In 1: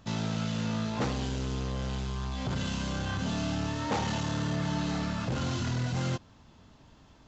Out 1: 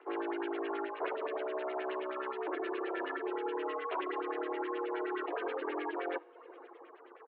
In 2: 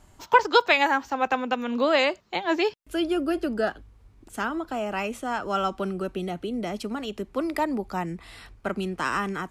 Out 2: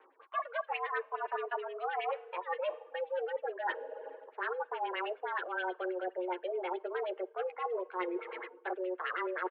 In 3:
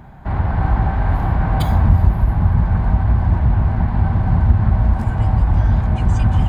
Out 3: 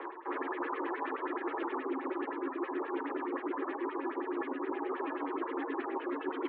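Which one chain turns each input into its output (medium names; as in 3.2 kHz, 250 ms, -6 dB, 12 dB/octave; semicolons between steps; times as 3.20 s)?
median filter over 15 samples; on a send: early reflections 11 ms -5 dB, 59 ms -15 dB; on the sum: dynamic bell 800 Hz, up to -4 dB, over -35 dBFS, Q 1.5; LFO low-pass sine 9.5 Hz 730–2900 Hz; FDN reverb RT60 2.4 s, low-frequency decay 1.45×, high-frequency decay 0.95×, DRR 16.5 dB; mistuned SSB +370 Hz 160–3500 Hz; reverb removal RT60 0.63 s; reverse; compression 10:1, threshold -37 dBFS; reverse; frequency shift -190 Hz; trim +4 dB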